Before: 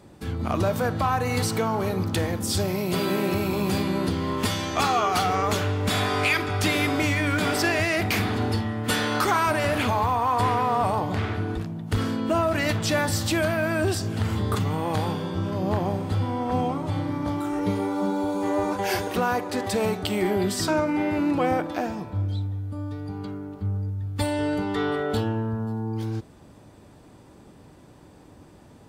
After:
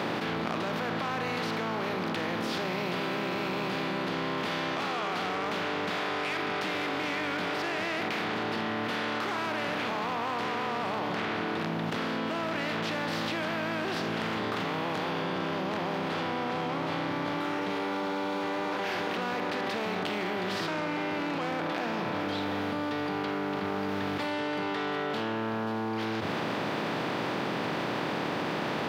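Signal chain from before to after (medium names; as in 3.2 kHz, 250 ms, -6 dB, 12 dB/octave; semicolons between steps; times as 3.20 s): spectral contrast reduction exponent 0.43; distance through air 320 m; saturation -22 dBFS, distortion -16 dB; high-pass 140 Hz 24 dB/octave; hum notches 50/100/150/200/250 Hz; level flattener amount 100%; trim -5 dB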